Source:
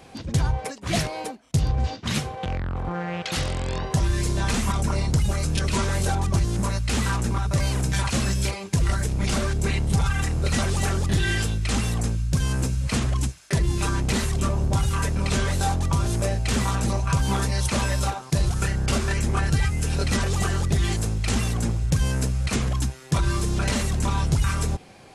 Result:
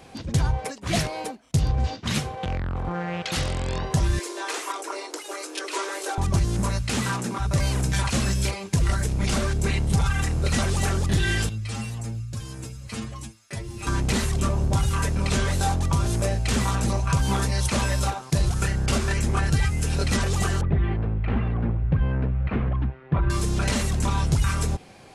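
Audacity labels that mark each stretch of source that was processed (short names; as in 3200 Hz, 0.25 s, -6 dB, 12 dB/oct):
4.190000	6.180000	rippled Chebyshev high-pass 300 Hz, ripple 3 dB
6.820000	7.390000	HPF 65 Hz -> 190 Hz 24 dB/oct
11.490000	13.870000	metallic resonator 110 Hz, decay 0.21 s, inharmonicity 0.002
20.610000	23.300000	Bessel low-pass 1600 Hz, order 6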